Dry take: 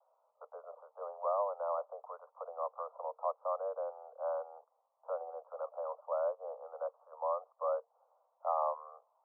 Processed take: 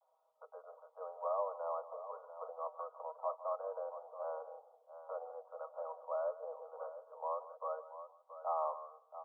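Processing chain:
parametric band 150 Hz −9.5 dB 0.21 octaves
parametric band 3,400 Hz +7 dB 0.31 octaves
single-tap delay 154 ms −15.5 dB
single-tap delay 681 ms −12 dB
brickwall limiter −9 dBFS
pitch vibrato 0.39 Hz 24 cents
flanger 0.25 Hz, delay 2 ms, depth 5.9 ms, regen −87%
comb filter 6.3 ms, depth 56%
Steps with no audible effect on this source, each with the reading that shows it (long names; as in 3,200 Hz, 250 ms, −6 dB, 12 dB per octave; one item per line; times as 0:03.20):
parametric band 150 Hz: nothing at its input below 430 Hz
parametric band 3,400 Hz: nothing at its input above 1,400 Hz
brickwall limiter −9 dBFS: peak of its input −22.0 dBFS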